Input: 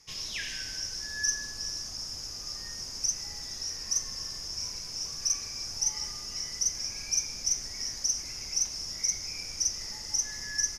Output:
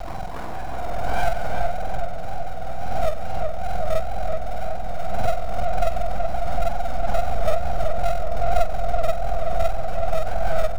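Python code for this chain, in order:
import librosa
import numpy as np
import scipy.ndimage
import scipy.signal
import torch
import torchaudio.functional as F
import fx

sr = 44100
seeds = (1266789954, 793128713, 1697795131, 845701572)

p1 = fx.octave_mirror(x, sr, pivot_hz=1400.0)
p2 = scipy.signal.sosfilt(scipy.signal.butter(8, 6300.0, 'lowpass', fs=sr, output='sos'), p1)
p3 = fx.high_shelf(p2, sr, hz=4500.0, db=9.0)
p4 = fx.comb(p3, sr, ms=1.9, depth=0.88, at=(6.36, 7.15))
p5 = fx.dynamic_eq(p4, sr, hz=280.0, q=3.7, threshold_db=-35.0, ratio=4.0, max_db=4)
p6 = fx.sample_hold(p5, sr, seeds[0], rate_hz=3100.0, jitter_pct=0)
p7 = p5 + (p6 * librosa.db_to_amplitude(-10.0))
p8 = fx.wow_flutter(p7, sr, seeds[1], rate_hz=2.1, depth_cents=69.0)
p9 = np.abs(p8)
p10 = p9 + fx.echo_filtered(p9, sr, ms=377, feedback_pct=63, hz=1600.0, wet_db=-3.0, dry=0)
y = fx.pre_swell(p10, sr, db_per_s=20.0)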